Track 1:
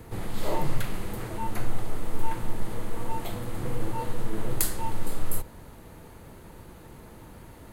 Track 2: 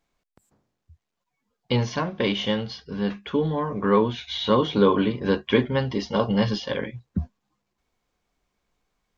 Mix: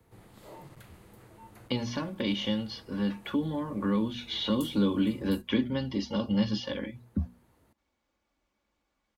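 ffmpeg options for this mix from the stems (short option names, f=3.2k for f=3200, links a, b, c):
-filter_complex "[0:a]asoftclip=type=hard:threshold=-14dB,volume=-18dB[a];[1:a]highshelf=f=5.2k:g=-7,bandreject=f=60:t=h:w=6,bandreject=f=120:t=h:w=6,bandreject=f=180:t=h:w=6,bandreject=f=240:t=h:w=6,aecho=1:1:3.5:0.55,volume=-2dB[b];[a][b]amix=inputs=2:normalize=0,highpass=50,acrossover=split=280|3000[c][d][e];[d]acompressor=threshold=-36dB:ratio=6[f];[c][f][e]amix=inputs=3:normalize=0"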